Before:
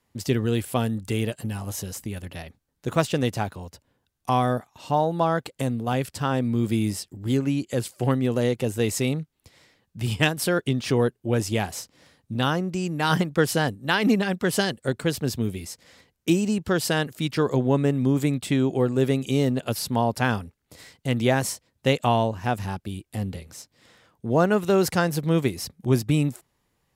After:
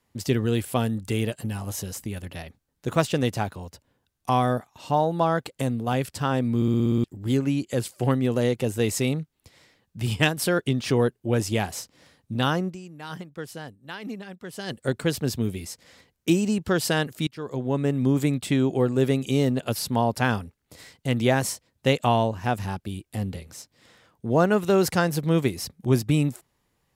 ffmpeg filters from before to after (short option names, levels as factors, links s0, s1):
-filter_complex "[0:a]asplit=12[s0][s1][s2][s3][s4][s5][s6][s7][s8][s9][s10][s11];[s0]atrim=end=6.622[s12];[s1]atrim=start=6.558:end=6.622[s13];[s2]atrim=start=6.558:end=6.622[s14];[s3]atrim=start=6.558:end=6.622[s15];[s4]atrim=start=6.558:end=6.622[s16];[s5]atrim=start=6.558:end=6.622[s17];[s6]atrim=start=6.558:end=6.622[s18];[s7]atrim=start=6.558:end=6.622[s19];[s8]atrim=start=7.038:end=13.13,asetpts=PTS-STARTPTS,afade=t=out:st=5.642:d=0.45:c=exp:silence=0.177828[s20];[s9]atrim=start=13.13:end=14.27,asetpts=PTS-STARTPTS,volume=0.178[s21];[s10]atrim=start=14.27:end=17.27,asetpts=PTS-STARTPTS,afade=t=in:d=0.45:c=exp:silence=0.177828,afade=t=out:st=2.996:d=0.004:c=hsin:silence=0.0794328[s22];[s11]atrim=start=17.27,asetpts=PTS-STARTPTS,afade=t=in:d=0.78:silence=0.0794328[s23];[s12][s13]acrossfade=d=0.004:c1=hsin:c2=hsin[s24];[s24][s14]acrossfade=d=0.004:c1=hsin:c2=hsin[s25];[s25][s15]acrossfade=d=0.004:c1=hsin:c2=hsin[s26];[s26][s16]acrossfade=d=0.004:c1=hsin:c2=hsin[s27];[s27][s17]acrossfade=d=0.004:c1=hsin:c2=hsin[s28];[s28][s18]acrossfade=d=0.004:c1=hsin:c2=hsin[s29];[s29][s19]acrossfade=d=0.004:c1=hsin:c2=hsin[s30];[s20][s21][s22][s23]concat=n=4:v=0:a=1[s31];[s30][s31]acrossfade=d=0.004:c1=hsin:c2=hsin"